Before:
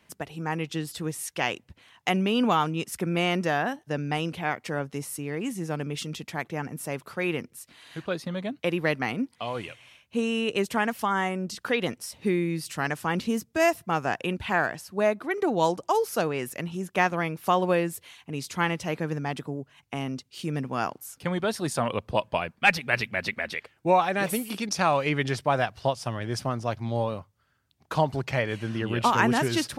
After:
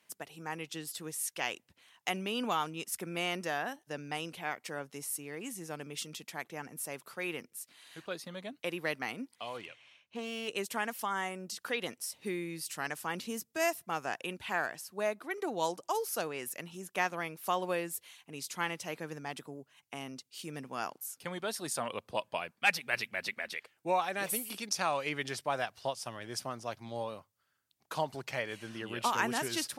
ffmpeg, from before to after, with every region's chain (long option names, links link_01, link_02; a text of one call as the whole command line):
ffmpeg -i in.wav -filter_complex "[0:a]asettb=1/sr,asplit=3[link_01][link_02][link_03];[link_01]atrim=end=9.574[link_04];[link_02]atrim=start=9.57:end=10.48,asetpts=PTS-STARTPTS,afade=type=in:duration=0.004:curve=qsin,afade=type=out:start_time=0.906:duration=0.004:curve=qsin,lowpass=4500,aeval=exprs='clip(val(0),-1,0.0501)':channel_layout=same[link_05];[link_03]atrim=start=10.476[link_06];[link_04][link_05]acrossfade=duration=0.004:curve1=hsin:curve2=qsin[link_07];[link_07][link_06]acrossfade=duration=0.004:curve1=qsin:curve2=hsin,highpass=frequency=340:poles=1,aemphasis=mode=production:type=cd,volume=-8dB" out.wav